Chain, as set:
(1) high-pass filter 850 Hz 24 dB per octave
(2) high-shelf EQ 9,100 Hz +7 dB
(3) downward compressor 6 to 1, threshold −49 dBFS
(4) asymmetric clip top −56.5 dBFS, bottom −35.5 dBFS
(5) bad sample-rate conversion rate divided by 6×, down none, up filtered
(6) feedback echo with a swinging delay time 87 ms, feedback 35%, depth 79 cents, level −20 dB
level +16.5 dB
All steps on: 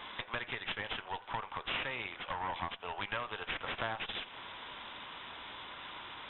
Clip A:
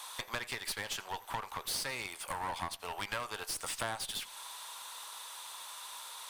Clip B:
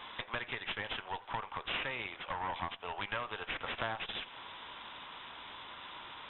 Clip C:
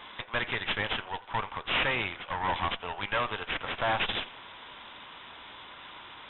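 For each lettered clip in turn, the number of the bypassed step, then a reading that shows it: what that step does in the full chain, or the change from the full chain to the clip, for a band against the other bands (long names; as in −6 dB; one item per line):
5, 4 kHz band +1.5 dB
2, change in momentary loudness spread +1 LU
3, change in crest factor −5.0 dB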